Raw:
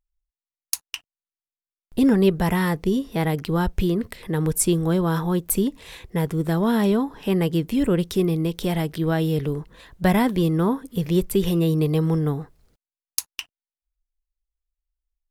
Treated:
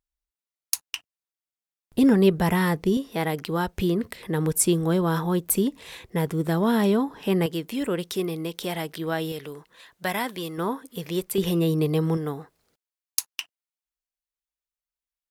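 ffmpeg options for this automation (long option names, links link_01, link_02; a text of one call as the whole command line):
ffmpeg -i in.wav -af "asetnsamples=nb_out_samples=441:pad=0,asendcmd='2.97 highpass f 330;3.77 highpass f 150;7.46 highpass f 560;9.32 highpass f 1200;10.58 highpass f 590;11.38 highpass f 180;12.17 highpass f 460',highpass=frequency=89:poles=1" out.wav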